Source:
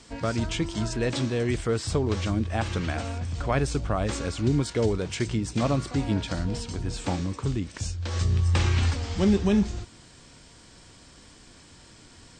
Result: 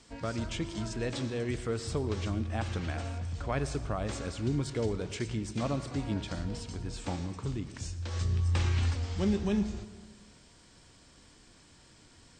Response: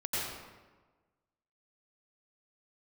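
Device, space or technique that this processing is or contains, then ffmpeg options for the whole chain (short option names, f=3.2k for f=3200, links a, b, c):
saturated reverb return: -filter_complex "[0:a]asplit=2[a][b];[1:a]atrim=start_sample=2205[c];[b][c]afir=irnorm=-1:irlink=0,asoftclip=type=tanh:threshold=-8.5dB,volume=-17dB[d];[a][d]amix=inputs=2:normalize=0,volume=-8dB"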